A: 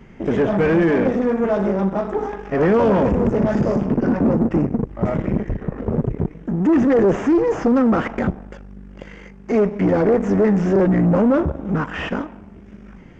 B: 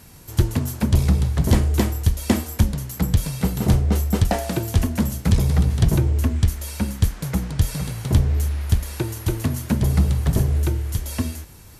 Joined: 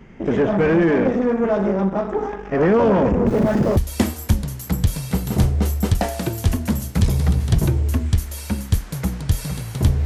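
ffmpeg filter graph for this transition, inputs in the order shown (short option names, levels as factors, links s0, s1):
-filter_complex "[0:a]asettb=1/sr,asplit=3[s0][s1][s2];[s0]atrim=end=3.274[s3];[s1]atrim=start=3.27:end=3.77,asetpts=PTS-STARTPTS,afade=t=in:d=0.004:c=qsin,afade=t=out:st=0.496:d=0.004:c=qsin,aeval=exprs='val(0)+0.5*0.0282*sgn(val(0))':c=same[s4];[s2]atrim=start=3.766[s5];[s3][s4]acrossfade=d=0.004:c1=hsin:c2=qsin[s6];[s6][s5]acrossfade=d=0.004:c1=qsin:c2=hsin,apad=whole_dur=10.05,atrim=end=10.05,atrim=end=3.772[s7];[1:a]atrim=start=2.068:end=8.35[s8];[s7][s8]acrossfade=d=0.004:c1=hsin:c2=hsin"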